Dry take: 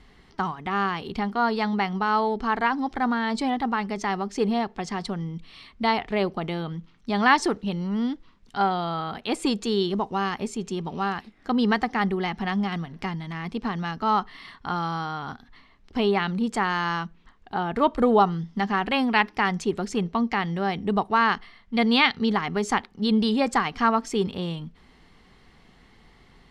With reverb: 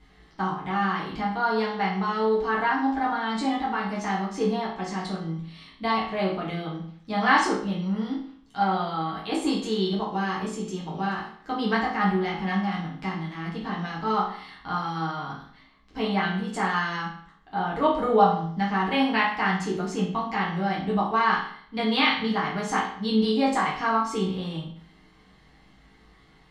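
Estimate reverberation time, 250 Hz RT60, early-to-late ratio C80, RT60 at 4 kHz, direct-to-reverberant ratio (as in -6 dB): 0.60 s, 0.60 s, 9.0 dB, 0.50 s, -6.0 dB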